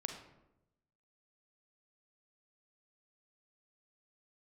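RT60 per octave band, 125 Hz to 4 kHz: 1.2, 1.1, 1.0, 0.80, 0.65, 0.50 s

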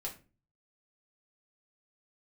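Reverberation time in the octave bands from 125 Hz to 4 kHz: 0.65, 0.50, 0.40, 0.30, 0.30, 0.25 s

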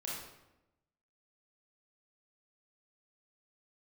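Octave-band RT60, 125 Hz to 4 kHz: 1.2, 1.1, 1.0, 0.90, 0.80, 0.65 s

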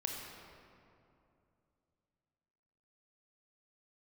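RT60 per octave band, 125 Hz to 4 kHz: 3.5, 3.2, 2.8, 2.5, 2.0, 1.4 s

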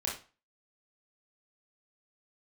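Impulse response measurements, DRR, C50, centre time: -4.0 dB, 6.0 dB, 31 ms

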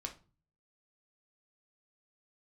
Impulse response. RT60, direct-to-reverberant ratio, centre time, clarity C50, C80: 0.35 s, 2.5 dB, 10 ms, 13.0 dB, 19.5 dB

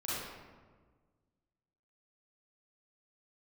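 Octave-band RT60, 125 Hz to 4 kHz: 2.1, 1.9, 1.6, 1.4, 1.1, 0.80 s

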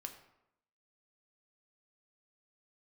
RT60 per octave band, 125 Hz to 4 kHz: 0.75, 0.85, 0.80, 0.80, 0.70, 0.55 s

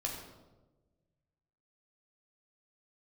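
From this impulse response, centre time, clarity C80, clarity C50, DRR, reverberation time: 45 ms, 6.0 dB, 4.0 dB, -1.5 dB, 1.2 s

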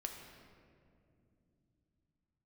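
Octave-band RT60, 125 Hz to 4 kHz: 5.1, 4.7, 3.1, 1.9, 1.7, 1.3 s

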